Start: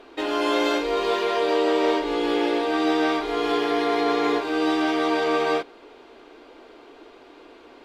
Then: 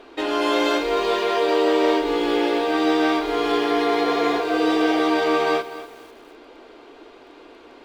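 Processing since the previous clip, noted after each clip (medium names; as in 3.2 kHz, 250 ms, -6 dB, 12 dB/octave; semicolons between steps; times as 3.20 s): spectral replace 4.06–4.99 s, 360–830 Hz; bit-crushed delay 247 ms, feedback 35%, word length 7-bit, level -14 dB; trim +2 dB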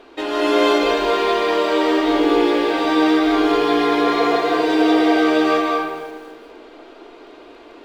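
algorithmic reverb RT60 1.3 s, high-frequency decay 0.55×, pre-delay 120 ms, DRR -0.5 dB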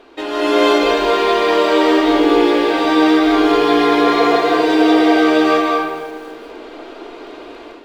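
level rider gain up to 8 dB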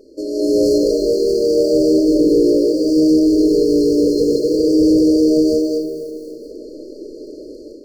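hard clipper -9.5 dBFS, distortion -15 dB; brick-wall FIR band-stop 620–4200 Hz; trim +2 dB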